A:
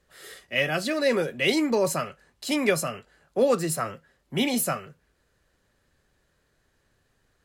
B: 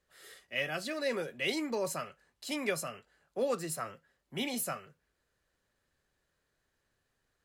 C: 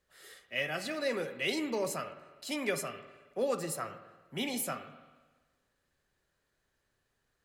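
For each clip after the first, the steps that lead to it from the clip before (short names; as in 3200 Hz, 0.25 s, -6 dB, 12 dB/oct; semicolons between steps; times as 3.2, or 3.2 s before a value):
low shelf 430 Hz -4.5 dB; gain -8.5 dB
spring tank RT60 1.3 s, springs 48/53 ms, chirp 55 ms, DRR 10 dB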